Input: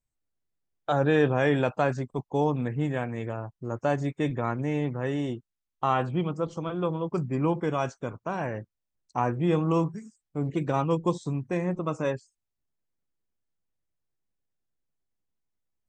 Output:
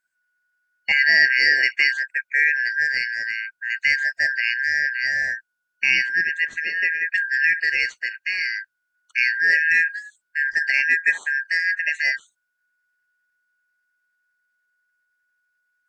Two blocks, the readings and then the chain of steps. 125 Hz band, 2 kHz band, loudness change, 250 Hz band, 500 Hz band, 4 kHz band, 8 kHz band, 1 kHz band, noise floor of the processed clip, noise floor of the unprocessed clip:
under -25 dB, +22.0 dB, +9.0 dB, under -20 dB, under -15 dB, +16.5 dB, no reading, under -20 dB, -77 dBFS, -85 dBFS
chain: four frequency bands reordered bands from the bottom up 3142; trim +6 dB

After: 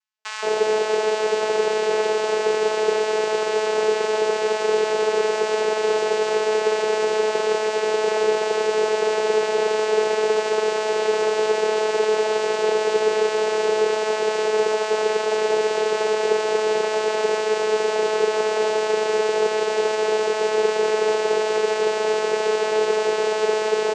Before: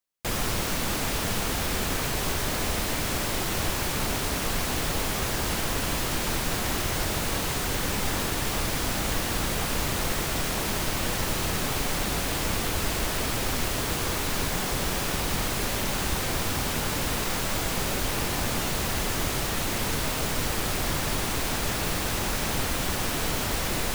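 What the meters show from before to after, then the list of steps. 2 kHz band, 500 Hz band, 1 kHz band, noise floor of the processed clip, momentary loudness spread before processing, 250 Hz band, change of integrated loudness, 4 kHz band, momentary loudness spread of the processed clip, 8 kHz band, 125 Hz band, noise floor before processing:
+4.0 dB, +16.5 dB, +7.0 dB, -25 dBFS, 0 LU, -4.5 dB, +6.0 dB, 0.0 dB, 1 LU, -5.0 dB, under -15 dB, -29 dBFS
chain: bands offset in time highs, lows 170 ms, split 670 Hz; frequency shift +390 Hz; vocoder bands 8, saw 216 Hz; trim +8.5 dB

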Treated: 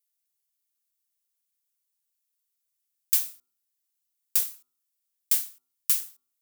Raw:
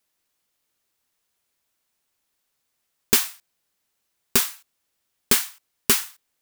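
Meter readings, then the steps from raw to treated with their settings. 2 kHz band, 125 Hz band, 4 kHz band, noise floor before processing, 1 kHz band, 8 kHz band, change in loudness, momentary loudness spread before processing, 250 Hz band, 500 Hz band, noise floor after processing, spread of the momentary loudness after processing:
-17.5 dB, under -25 dB, -12.0 dB, -76 dBFS, under -20 dB, -6.5 dB, -4.5 dB, 12 LU, under -25 dB, under -25 dB, -81 dBFS, 12 LU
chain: pre-emphasis filter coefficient 0.9; de-hum 126 Hz, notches 11; short-mantissa float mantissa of 4-bit; trim -7 dB

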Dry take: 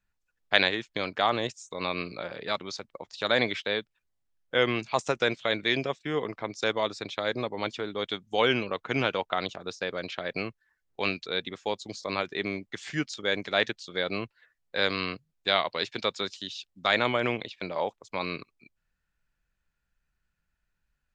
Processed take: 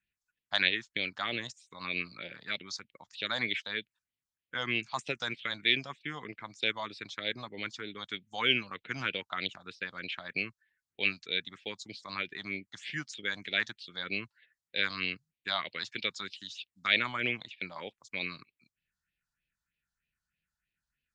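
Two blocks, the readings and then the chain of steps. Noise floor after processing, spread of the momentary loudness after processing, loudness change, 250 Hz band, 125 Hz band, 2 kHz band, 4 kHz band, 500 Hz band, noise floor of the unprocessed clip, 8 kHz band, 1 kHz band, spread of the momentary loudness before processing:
under -85 dBFS, 13 LU, -4.5 dB, -8.5 dB, -8.0 dB, -2.0 dB, -2.5 dB, -13.5 dB, -80 dBFS, -4.5 dB, -9.0 dB, 10 LU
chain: bass shelf 280 Hz +6 dB; phase shifter stages 4, 3.2 Hz, lowest notch 390–1200 Hz; frequency weighting D; trim -7.5 dB

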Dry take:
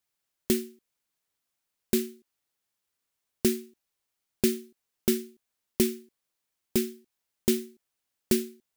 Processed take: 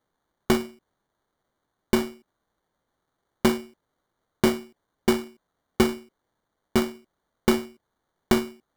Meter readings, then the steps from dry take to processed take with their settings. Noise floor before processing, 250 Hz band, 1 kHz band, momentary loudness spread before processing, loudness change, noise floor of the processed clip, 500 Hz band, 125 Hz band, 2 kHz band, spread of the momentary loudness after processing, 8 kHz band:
-83 dBFS, +4.0 dB, +21.0 dB, 14 LU, +3.5 dB, -80 dBFS, +4.0 dB, +6.0 dB, +10.5 dB, 15 LU, -3.0 dB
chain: sample-and-hold 17×; trim +4 dB

